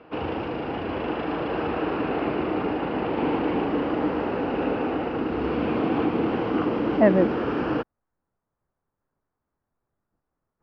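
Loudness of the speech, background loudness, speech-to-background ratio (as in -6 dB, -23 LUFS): -22.0 LUFS, -26.5 LUFS, 4.5 dB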